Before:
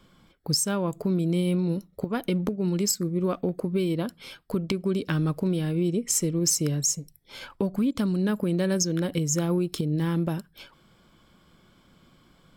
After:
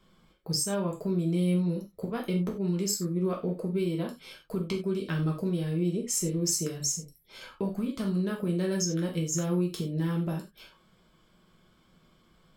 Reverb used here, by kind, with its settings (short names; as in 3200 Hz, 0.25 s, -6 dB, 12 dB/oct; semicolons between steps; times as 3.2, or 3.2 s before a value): non-linear reverb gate 0.12 s falling, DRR -1.5 dB; gain -8 dB